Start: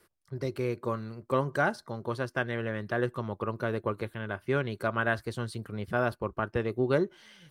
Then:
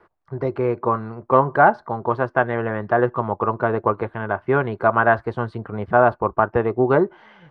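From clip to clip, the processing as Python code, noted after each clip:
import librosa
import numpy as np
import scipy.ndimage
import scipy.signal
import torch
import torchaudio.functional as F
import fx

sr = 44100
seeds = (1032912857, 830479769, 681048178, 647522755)

y = scipy.signal.sosfilt(scipy.signal.butter(2, 1800.0, 'lowpass', fs=sr, output='sos'), x)
y = fx.peak_eq(y, sr, hz=830.0, db=12.0, octaves=1.4)
y = fx.notch(y, sr, hz=560.0, q=12.0)
y = F.gain(torch.from_numpy(y), 6.5).numpy()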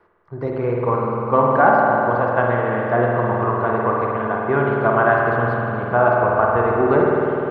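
y = fx.rev_spring(x, sr, rt60_s=3.5, pass_ms=(50,), chirp_ms=30, drr_db=-3.0)
y = F.gain(torch.from_numpy(y), -2.5).numpy()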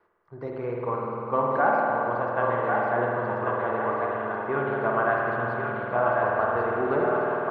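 y = fx.low_shelf(x, sr, hz=210.0, db=-6.0)
y = fx.echo_thinned(y, sr, ms=1089, feedback_pct=46, hz=530.0, wet_db=-3.0)
y = F.gain(torch.from_numpy(y), -8.0).numpy()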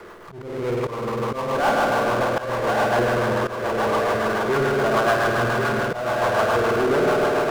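y = fx.auto_swell(x, sr, attack_ms=459.0)
y = fx.rotary(y, sr, hz=7.0)
y = fx.power_curve(y, sr, exponent=0.5)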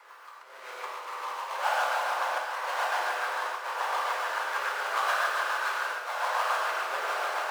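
y = scipy.signal.sosfilt(scipy.signal.butter(4, 730.0, 'highpass', fs=sr, output='sos'), x)
y = fx.hpss(y, sr, part='harmonic', gain_db=-16)
y = fx.rev_gated(y, sr, seeds[0], gate_ms=160, shape='flat', drr_db=-3.5)
y = F.gain(torch.from_numpy(y), -5.0).numpy()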